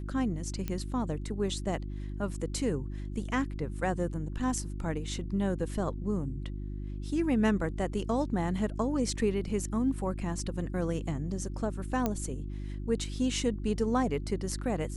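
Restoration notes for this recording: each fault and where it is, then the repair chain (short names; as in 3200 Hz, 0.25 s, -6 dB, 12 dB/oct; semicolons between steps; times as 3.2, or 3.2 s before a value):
hum 50 Hz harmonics 7 -37 dBFS
0.68 pop -20 dBFS
12.06 pop -15 dBFS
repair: de-click; de-hum 50 Hz, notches 7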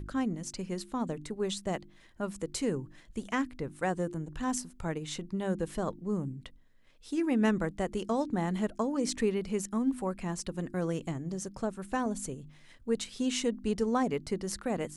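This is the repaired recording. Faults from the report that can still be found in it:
none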